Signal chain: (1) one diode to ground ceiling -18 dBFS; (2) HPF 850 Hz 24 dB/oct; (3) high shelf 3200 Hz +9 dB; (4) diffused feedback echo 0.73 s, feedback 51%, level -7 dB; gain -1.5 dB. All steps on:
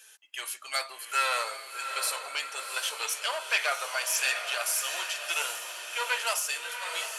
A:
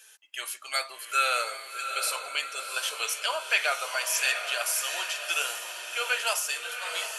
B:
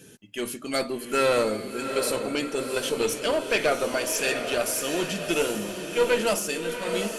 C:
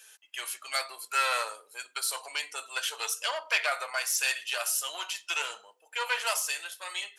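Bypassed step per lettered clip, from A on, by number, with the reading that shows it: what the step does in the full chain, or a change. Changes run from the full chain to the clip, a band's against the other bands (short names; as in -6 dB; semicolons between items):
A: 1, loudness change +1.5 LU; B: 2, 500 Hz band +16.0 dB; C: 4, echo-to-direct -5.5 dB to none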